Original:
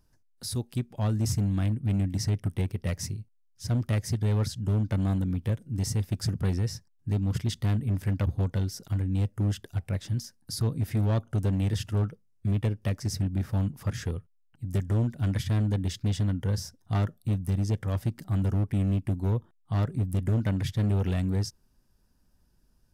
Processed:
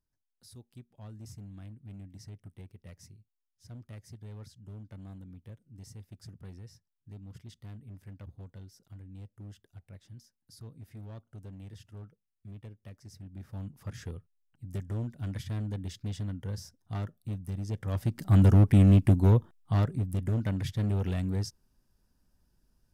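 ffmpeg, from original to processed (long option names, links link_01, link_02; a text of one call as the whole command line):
ffmpeg -i in.wav -af "volume=7dB,afade=type=in:start_time=13.2:duration=0.85:silence=0.281838,afade=type=in:start_time=17.66:duration=0.47:silence=0.375837,afade=type=in:start_time=18.13:duration=0.25:silence=0.446684,afade=type=out:start_time=19.09:duration=0.95:silence=0.298538" out.wav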